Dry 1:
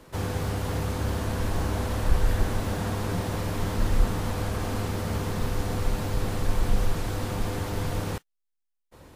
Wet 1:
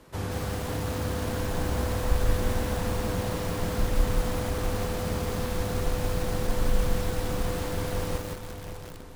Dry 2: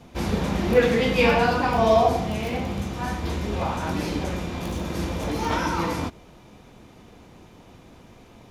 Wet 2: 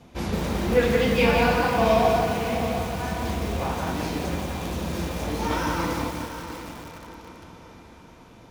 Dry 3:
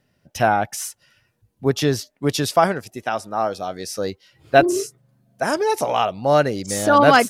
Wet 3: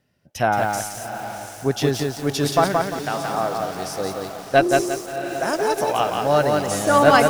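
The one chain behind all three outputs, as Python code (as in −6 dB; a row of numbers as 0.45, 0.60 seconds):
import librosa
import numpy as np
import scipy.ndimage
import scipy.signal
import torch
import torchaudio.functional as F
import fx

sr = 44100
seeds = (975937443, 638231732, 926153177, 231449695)

y = fx.echo_diffused(x, sr, ms=692, feedback_pct=48, wet_db=-9.5)
y = fx.cheby_harmonics(y, sr, harmonics=(2,), levels_db=(-20,), full_scale_db=-0.5)
y = fx.echo_crushed(y, sr, ms=174, feedback_pct=35, bits=6, wet_db=-3)
y = F.gain(torch.from_numpy(y), -2.5).numpy()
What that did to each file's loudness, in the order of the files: −0.5, −0.5, −1.0 LU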